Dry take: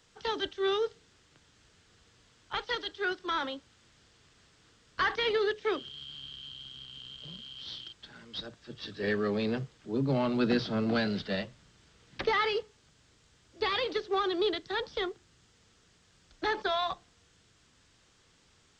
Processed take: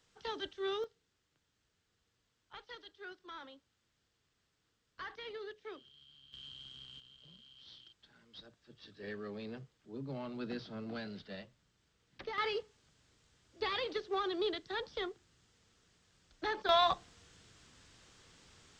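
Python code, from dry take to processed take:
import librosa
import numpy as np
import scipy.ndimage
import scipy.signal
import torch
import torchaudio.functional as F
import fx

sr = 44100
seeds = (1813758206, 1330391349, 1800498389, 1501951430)

y = fx.gain(x, sr, db=fx.steps((0.0, -8.0), (0.84, -17.0), (6.33, -5.5), (7.0, -14.0), (12.38, -6.0), (16.69, 3.0)))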